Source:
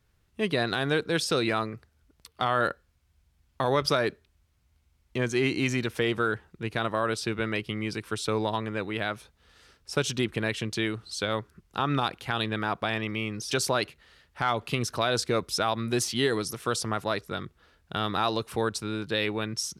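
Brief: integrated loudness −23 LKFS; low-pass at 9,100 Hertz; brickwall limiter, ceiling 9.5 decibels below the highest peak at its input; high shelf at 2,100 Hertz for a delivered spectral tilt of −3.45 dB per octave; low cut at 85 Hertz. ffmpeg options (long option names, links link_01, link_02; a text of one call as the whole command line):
ffmpeg -i in.wav -af "highpass=85,lowpass=9100,highshelf=frequency=2100:gain=4,volume=8.5dB,alimiter=limit=-10.5dB:level=0:latency=1" out.wav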